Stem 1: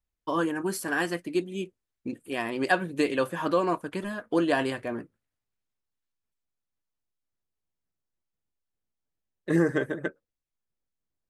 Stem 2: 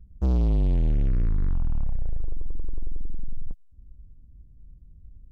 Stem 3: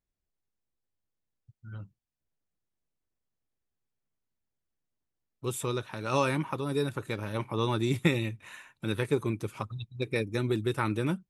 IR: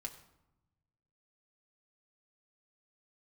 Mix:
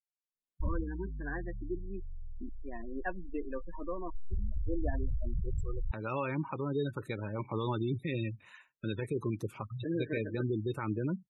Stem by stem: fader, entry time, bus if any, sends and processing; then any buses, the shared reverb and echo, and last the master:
-14.0 dB, 0.35 s, no bus, no send, resonant low shelf 130 Hz -13.5 dB, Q 1.5; gain riding within 3 dB 2 s
-3.5 dB, 0.60 s, bus A, no send, spectral gate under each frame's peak -20 dB strong; level flattener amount 70%
-8.0 dB, 0.00 s, bus A, no send, expander -41 dBFS
bus A: 0.0 dB, compressor with a negative ratio -34 dBFS, ratio -1; peak limiter -23 dBFS, peak gain reduction 8 dB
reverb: none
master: spectral gate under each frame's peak -20 dB strong

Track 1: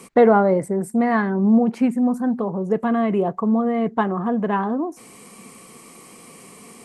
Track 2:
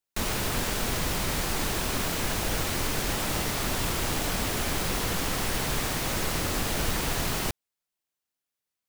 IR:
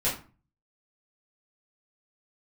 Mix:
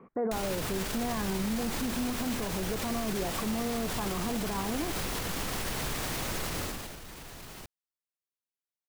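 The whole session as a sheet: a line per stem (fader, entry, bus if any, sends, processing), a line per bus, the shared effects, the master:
-8.0 dB, 0.00 s, no send, low-pass 1.6 kHz 24 dB/octave; peak limiter -16 dBFS, peak gain reduction 11.5 dB
6.60 s -0.5 dB -> 6.99 s -12.5 dB, 0.15 s, no send, peak limiter -23.5 dBFS, peak gain reduction 9 dB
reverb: none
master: peak limiter -23 dBFS, peak gain reduction 5 dB

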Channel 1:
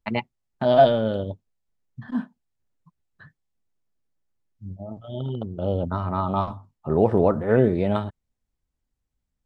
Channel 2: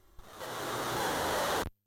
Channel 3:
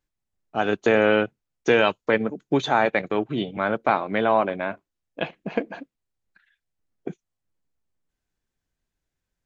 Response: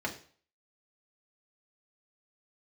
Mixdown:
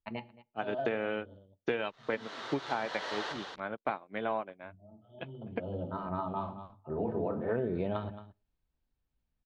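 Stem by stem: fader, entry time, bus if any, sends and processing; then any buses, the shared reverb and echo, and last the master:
5.01 s -11 dB -> 5.53 s -2 dB, 0.00 s, send -17.5 dB, echo send -22 dB, band-stop 2 kHz, Q 11; auto duck -24 dB, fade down 1.00 s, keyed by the third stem
-9.5 dB, 1.70 s, send -11 dB, echo send -4 dB, tilt EQ +3.5 dB/octave
-3.0 dB, 0.00 s, no send, no echo send, upward expansion 2.5:1, over -40 dBFS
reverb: on, RT60 0.45 s, pre-delay 3 ms
echo: delay 222 ms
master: low-pass 4.5 kHz 24 dB/octave; compression 10:1, threshold -28 dBFS, peak gain reduction 11 dB

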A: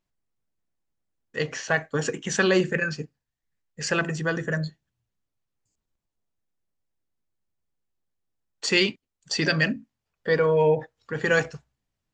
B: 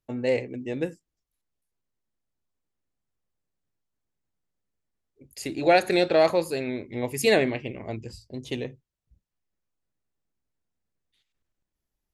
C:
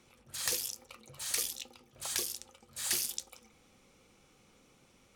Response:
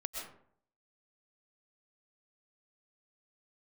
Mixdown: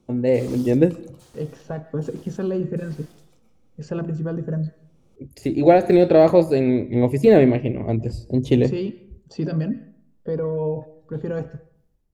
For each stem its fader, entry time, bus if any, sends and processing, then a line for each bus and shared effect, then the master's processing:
-12.5 dB, 0.00 s, bus A, send -19 dB, treble shelf 2.6 kHz -11 dB
+1.0 dB, 0.00 s, no bus, send -18 dB, de-esser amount 90%
-1.5 dB, 0.00 s, bus A, send -17.5 dB, slew-rate limiter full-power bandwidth 51 Hz; auto duck -22 dB, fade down 0.25 s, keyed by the first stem
bus A: 0.0 dB, peaking EQ 1.9 kHz -15 dB 0.51 oct; peak limiter -31 dBFS, peak gain reduction 7 dB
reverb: on, RT60 0.60 s, pre-delay 85 ms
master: tilt shelf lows +8 dB, about 710 Hz; level rider gain up to 9 dB

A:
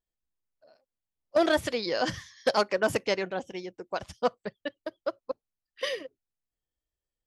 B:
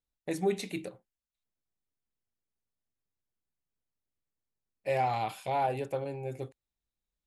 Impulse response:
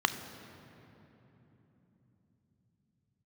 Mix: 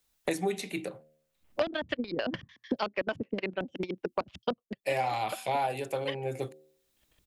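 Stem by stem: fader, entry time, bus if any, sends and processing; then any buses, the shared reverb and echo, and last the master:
-7.5 dB, 0.25 s, no send, peak limiter -18 dBFS, peak gain reduction 5 dB; transient shaper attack +9 dB, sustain -8 dB; LFO low-pass square 6.7 Hz 250–2900 Hz; auto duck -10 dB, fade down 0.30 s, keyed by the second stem
+1.5 dB, 0.00 s, no send, tilt EQ +1.5 dB/octave; de-hum 76.59 Hz, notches 10; three bands expanded up and down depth 40%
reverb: none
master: three bands compressed up and down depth 100%

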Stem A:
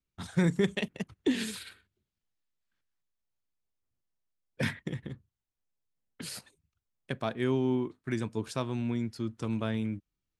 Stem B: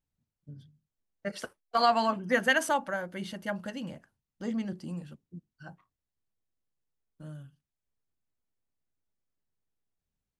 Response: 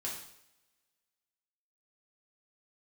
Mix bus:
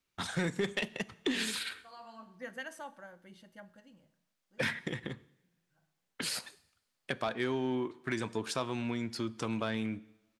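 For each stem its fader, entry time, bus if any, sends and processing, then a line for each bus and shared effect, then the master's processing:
0.0 dB, 0.00 s, send -17 dB, overdrive pedal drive 16 dB, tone 6 kHz, clips at -14 dBFS
-18.5 dB, 0.10 s, send -13 dB, auto duck -19 dB, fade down 1.00 s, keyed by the first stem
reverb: on, pre-delay 3 ms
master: compression 2:1, threshold -35 dBFS, peak gain reduction 8.5 dB

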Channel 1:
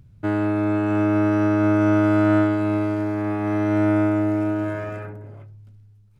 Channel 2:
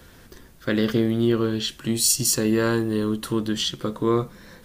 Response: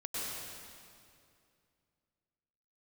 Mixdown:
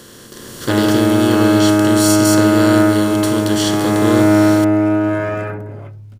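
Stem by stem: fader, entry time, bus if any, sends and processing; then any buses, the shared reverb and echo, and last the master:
-4.0 dB, 0.45 s, no send, bass shelf 86 Hz -7.5 dB
-13.0 dB, 0.00 s, no send, spectral levelling over time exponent 0.4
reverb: none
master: level rider gain up to 15.5 dB

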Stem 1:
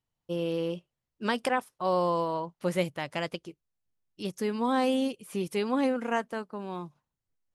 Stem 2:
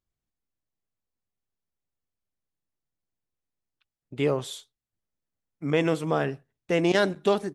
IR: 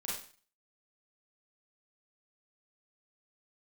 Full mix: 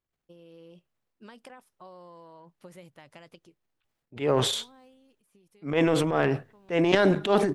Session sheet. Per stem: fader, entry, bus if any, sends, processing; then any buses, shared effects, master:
-18.5 dB, 0.00 s, no send, compression 4:1, threshold -33 dBFS, peak gain reduction 10 dB; level rider gain up to 4.5 dB; auto duck -13 dB, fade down 0.70 s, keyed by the second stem
+1.5 dB, 0.00 s, no send, tone controls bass -4 dB, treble -9 dB; transient shaper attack -11 dB, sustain +10 dB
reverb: none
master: transient shaper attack +2 dB, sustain +7 dB; hum notches 50/100 Hz

